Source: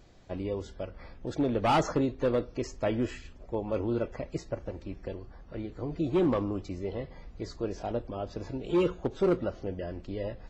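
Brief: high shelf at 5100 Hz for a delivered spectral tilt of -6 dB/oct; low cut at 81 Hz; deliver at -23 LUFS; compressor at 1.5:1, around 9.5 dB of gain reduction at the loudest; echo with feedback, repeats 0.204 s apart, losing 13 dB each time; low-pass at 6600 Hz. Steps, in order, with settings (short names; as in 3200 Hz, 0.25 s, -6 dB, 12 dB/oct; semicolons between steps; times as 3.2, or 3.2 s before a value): HPF 81 Hz; LPF 6600 Hz; high shelf 5100 Hz +7.5 dB; compressor 1.5:1, threshold -49 dBFS; feedback echo 0.204 s, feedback 22%, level -13 dB; gain +17.5 dB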